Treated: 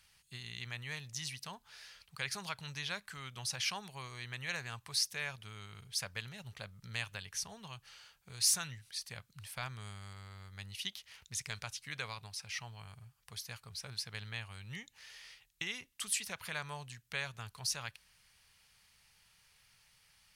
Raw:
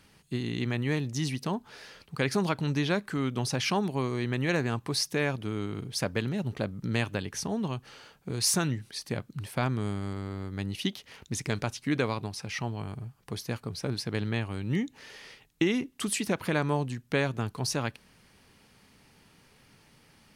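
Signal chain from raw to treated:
guitar amp tone stack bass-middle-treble 10-0-10
level −2 dB

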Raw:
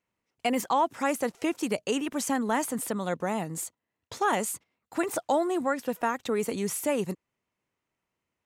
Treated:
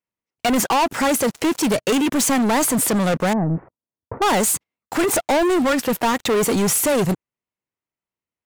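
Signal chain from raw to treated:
dynamic equaliser 130 Hz, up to +4 dB, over −51 dBFS, Q 3.1
leveller curve on the samples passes 5
0:03.33–0:04.22: Gaussian smoothing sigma 7.3 samples

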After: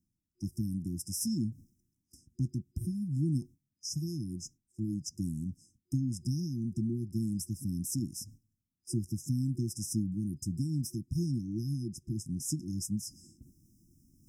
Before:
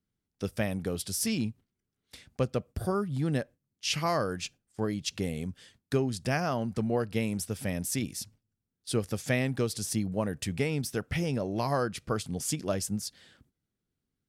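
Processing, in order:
brick-wall band-stop 360–5,000 Hz
dynamic equaliser 140 Hz, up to +4 dB, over −45 dBFS, Q 1.1
reversed playback
upward compression, threshold −39 dBFS
reversed playback
level −3.5 dB

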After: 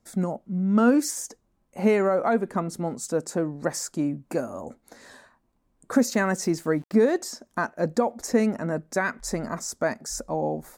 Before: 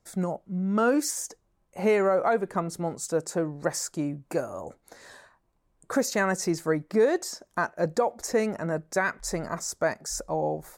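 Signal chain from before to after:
parametric band 240 Hz +11 dB 0.43 octaves
0:06.07–0:07.14: centre clipping without the shift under −48 dBFS

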